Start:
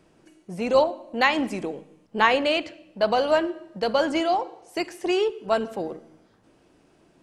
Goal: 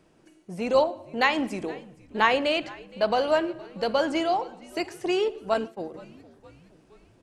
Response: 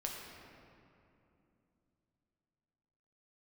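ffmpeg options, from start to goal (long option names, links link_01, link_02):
-filter_complex "[0:a]asplit=5[link_01][link_02][link_03][link_04][link_05];[link_02]adelay=467,afreqshift=-82,volume=-22dB[link_06];[link_03]adelay=934,afreqshift=-164,volume=-26.9dB[link_07];[link_04]adelay=1401,afreqshift=-246,volume=-31.8dB[link_08];[link_05]adelay=1868,afreqshift=-328,volume=-36.6dB[link_09];[link_01][link_06][link_07][link_08][link_09]amix=inputs=5:normalize=0,asettb=1/sr,asplit=3[link_10][link_11][link_12];[link_10]atrim=end=5.544[link_13];[link_11]atrim=start=5.54:end=5.94,asetpts=PTS-STARTPTS,afade=type=in:duration=0.004:curve=qsin,afade=type=out:start_time=0.396:duration=0.004:curve=qsin,agate=range=-33dB:threshold=-25dB:ratio=3:detection=peak[link_14];[link_12]atrim=start=5.936[link_15];[link_13][link_14]acrossfade=duration=0.004:curve1=hsin:curve2=qsin[link_16];[link_16][link_15]acrossfade=duration=0.004:curve1=qsin:curve2=hsin,volume=-2dB"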